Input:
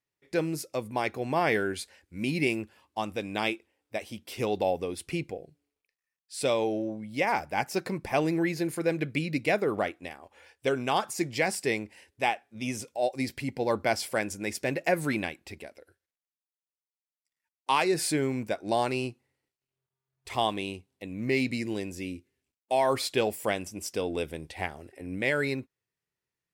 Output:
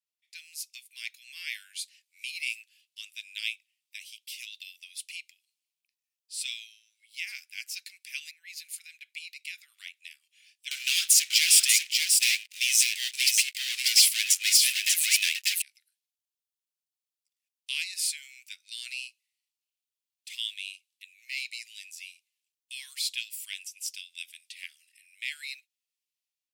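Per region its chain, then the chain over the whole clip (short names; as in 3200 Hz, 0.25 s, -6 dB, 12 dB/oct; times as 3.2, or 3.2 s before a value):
8.31–9.72 compressor 3:1, threshold -28 dBFS + three-band expander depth 70%
10.71–15.62 sample leveller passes 5 + echo 0.591 s -3.5 dB
whole clip: steep high-pass 2500 Hz 36 dB/oct; AGC gain up to 5.5 dB; gain -3 dB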